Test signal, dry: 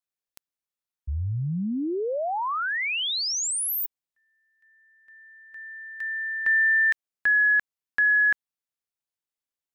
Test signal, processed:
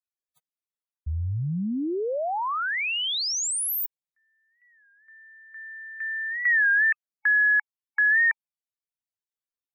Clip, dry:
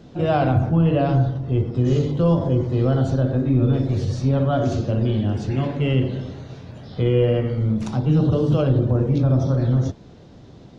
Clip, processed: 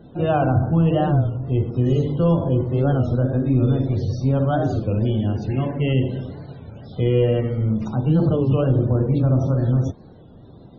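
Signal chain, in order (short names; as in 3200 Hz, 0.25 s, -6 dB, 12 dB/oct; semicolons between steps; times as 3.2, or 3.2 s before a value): loudest bins only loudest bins 64; record warp 33 1/3 rpm, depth 160 cents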